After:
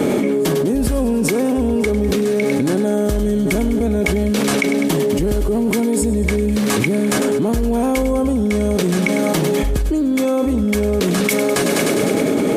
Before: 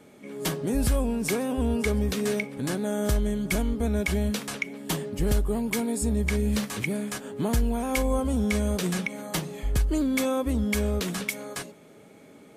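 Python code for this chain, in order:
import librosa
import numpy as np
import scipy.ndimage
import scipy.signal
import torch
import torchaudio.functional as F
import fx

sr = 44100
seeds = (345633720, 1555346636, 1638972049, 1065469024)

y = fx.peak_eq(x, sr, hz=340.0, db=9.0, octaves=1.9)
y = fx.echo_thinned(y, sr, ms=101, feedback_pct=71, hz=420.0, wet_db=-11.5)
y = fx.env_flatten(y, sr, amount_pct=100)
y = F.gain(torch.from_numpy(y), -1.5).numpy()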